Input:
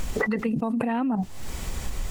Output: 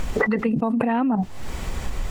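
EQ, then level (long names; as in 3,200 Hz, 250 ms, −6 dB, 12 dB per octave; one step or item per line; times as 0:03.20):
low-shelf EQ 370 Hz −3 dB
high-shelf EQ 4,100 Hz −11 dB
+6.0 dB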